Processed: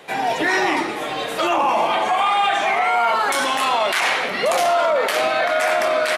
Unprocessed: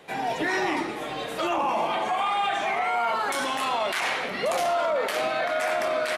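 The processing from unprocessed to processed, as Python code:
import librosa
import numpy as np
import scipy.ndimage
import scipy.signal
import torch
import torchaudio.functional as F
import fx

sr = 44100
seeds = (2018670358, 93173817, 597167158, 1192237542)

y = fx.low_shelf(x, sr, hz=300.0, db=-6.5)
y = y * 10.0 ** (8.0 / 20.0)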